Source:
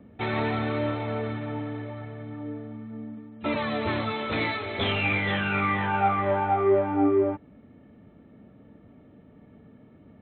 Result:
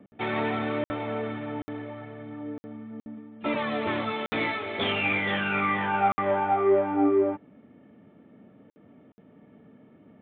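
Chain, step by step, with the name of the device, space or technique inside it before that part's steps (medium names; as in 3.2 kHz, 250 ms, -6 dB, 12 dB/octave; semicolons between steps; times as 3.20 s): call with lost packets (high-pass 160 Hz 12 dB/octave; resampled via 8 kHz; lost packets of 60 ms random)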